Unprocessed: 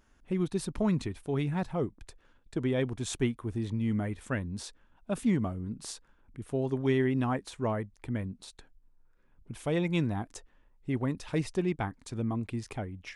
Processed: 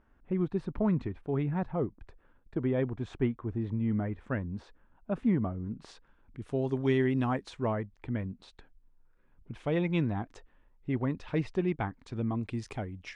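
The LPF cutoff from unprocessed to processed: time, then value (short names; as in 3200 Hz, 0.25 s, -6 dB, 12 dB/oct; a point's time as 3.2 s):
5.62 s 1700 Hz
5.91 s 2700 Hz
6.65 s 6800 Hz
7.35 s 6800 Hz
7.76 s 3100 Hz
12.01 s 3100 Hz
12.62 s 7200 Hz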